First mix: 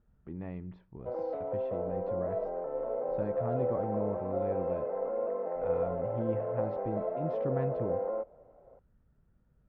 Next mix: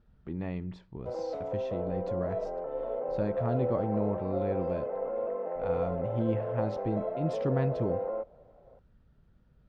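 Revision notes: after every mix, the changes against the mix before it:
speech +5.0 dB
master: remove low-pass filter 2,100 Hz 12 dB per octave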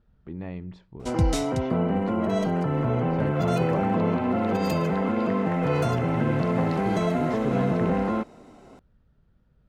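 background: remove four-pole ladder band-pass 580 Hz, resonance 75%

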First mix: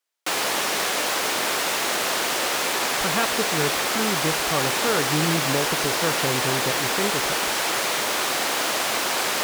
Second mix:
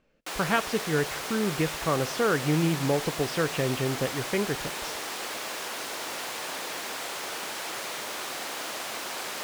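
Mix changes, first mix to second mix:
speech: entry −2.65 s
background −11.0 dB

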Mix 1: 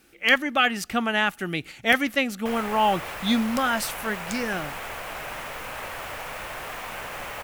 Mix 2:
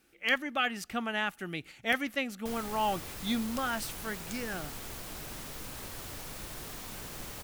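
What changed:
speech −9.0 dB
background: add flat-topped bell 1,200 Hz −14 dB 2.9 octaves

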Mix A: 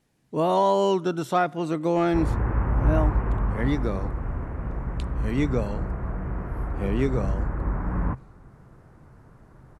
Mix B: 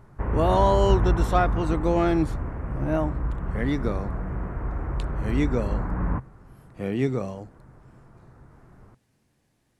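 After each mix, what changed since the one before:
background: entry −1.95 s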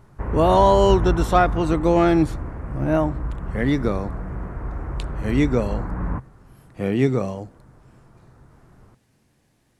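speech +5.5 dB

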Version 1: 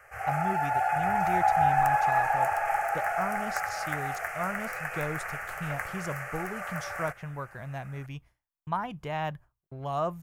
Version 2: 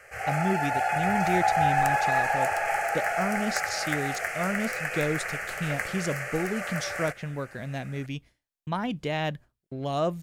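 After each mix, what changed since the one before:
master: add graphic EQ with 10 bands 250 Hz +11 dB, 500 Hz +6 dB, 1,000 Hz −6 dB, 2,000 Hz +4 dB, 4,000 Hz +11 dB, 8,000 Hz +6 dB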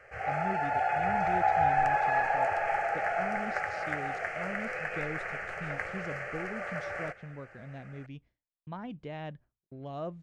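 speech −9.5 dB
master: add head-to-tape spacing loss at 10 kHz 25 dB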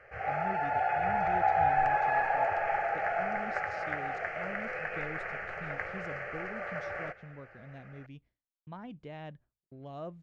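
speech −4.0 dB
background: add high-frequency loss of the air 150 metres

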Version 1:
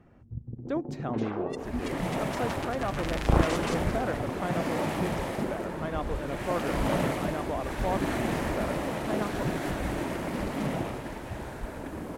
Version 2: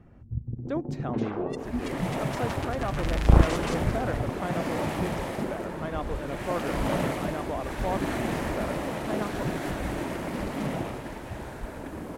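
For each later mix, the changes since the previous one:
first sound: add low-shelf EQ 170 Hz +8.5 dB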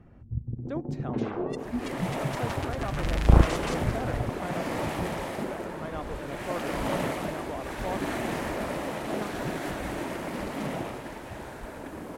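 speech −4.0 dB
second sound: add low-shelf EQ 190 Hz −6.5 dB

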